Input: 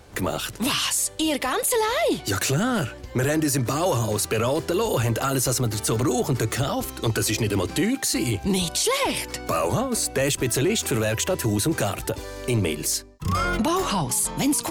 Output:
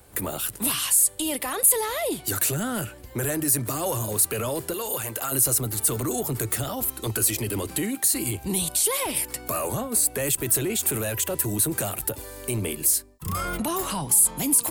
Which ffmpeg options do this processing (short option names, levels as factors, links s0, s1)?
-filter_complex "[0:a]asettb=1/sr,asplit=3[s0][s1][s2];[s0]atrim=end=4.734[s3];[s1]atrim=start=4.73:end=5.32,asetpts=PTS-STARTPTS,afade=t=in:d=0.004:c=qsin,afade=t=out:st=0.586:d=0.004:c=qsin,lowshelf=f=340:g=-11.5[s4];[s2]atrim=start=5.316[s5];[s3][s4]acrossfade=d=0.004:c1=hsin:c2=qsin[s6];[s6][s5]acrossfade=d=0.004:c1=qsin:c2=hsin,acrossover=split=220|1100|3600[s7][s8][s9][s10];[s10]aexciter=amount=5.2:drive=5.5:freq=8200[s11];[s7][s8][s9][s11]amix=inputs=4:normalize=0,volume=0.531"